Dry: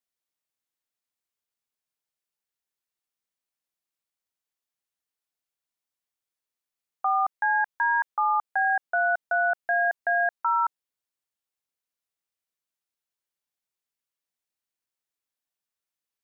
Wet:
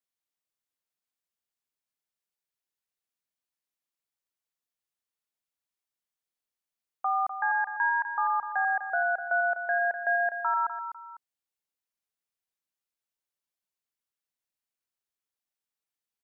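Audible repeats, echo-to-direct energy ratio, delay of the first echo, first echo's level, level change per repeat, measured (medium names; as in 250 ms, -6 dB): 2, -9.0 dB, 250 ms, -9.5 dB, -9.0 dB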